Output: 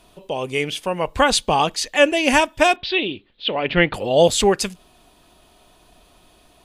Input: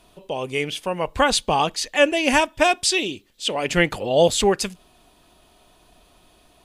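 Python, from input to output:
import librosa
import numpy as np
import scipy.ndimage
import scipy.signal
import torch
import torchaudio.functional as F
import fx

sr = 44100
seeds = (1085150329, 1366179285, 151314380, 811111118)

y = fx.steep_lowpass(x, sr, hz=4000.0, slope=48, at=(2.76, 3.94))
y = y * librosa.db_to_amplitude(2.0)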